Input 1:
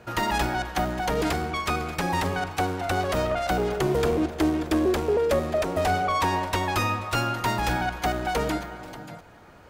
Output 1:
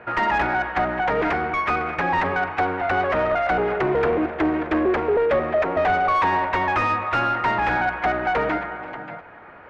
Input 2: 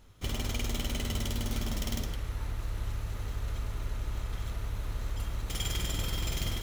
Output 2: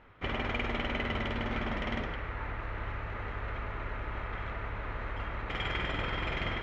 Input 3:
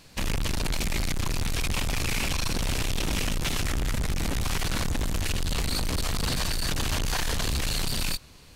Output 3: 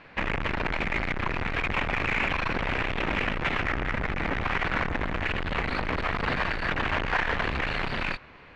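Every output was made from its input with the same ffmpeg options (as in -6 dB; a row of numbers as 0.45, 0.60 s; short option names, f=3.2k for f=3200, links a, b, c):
-filter_complex "[0:a]lowpass=f=2.1k:t=q:w=1.8,asplit=2[a][b];[b]highpass=f=720:p=1,volume=15dB,asoftclip=type=tanh:threshold=-9.5dB[c];[a][c]amix=inputs=2:normalize=0,lowpass=f=1.3k:p=1,volume=-6dB"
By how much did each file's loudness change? +4.0, -0.5, +0.5 LU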